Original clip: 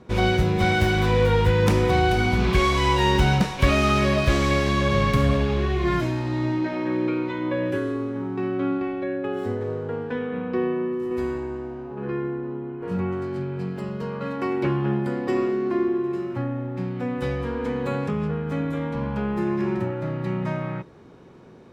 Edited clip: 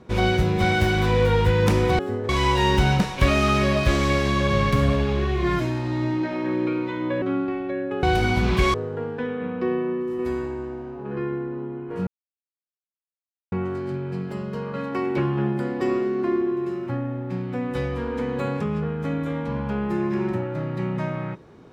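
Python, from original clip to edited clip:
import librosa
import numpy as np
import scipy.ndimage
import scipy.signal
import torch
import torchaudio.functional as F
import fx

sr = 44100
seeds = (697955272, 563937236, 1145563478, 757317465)

y = fx.edit(x, sr, fx.swap(start_s=1.99, length_s=0.71, other_s=9.36, other_length_s=0.3),
    fx.cut(start_s=7.63, length_s=0.92),
    fx.insert_silence(at_s=12.99, length_s=1.45), tone=tone)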